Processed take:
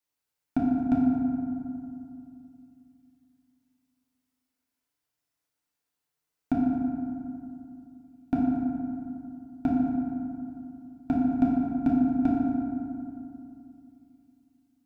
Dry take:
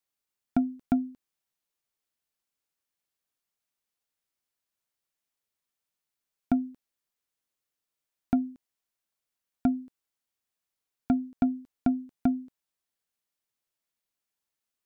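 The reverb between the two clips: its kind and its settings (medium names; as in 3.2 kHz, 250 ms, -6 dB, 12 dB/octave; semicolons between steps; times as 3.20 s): FDN reverb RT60 2.6 s, low-frequency decay 1.25×, high-frequency decay 0.45×, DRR -5 dB; trim -2.5 dB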